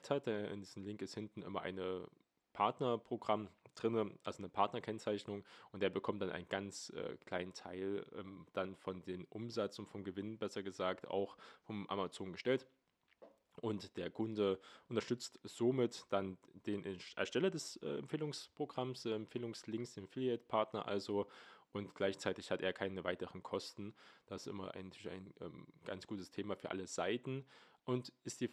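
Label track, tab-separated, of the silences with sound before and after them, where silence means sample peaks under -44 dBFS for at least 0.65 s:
12.570000	13.580000	silence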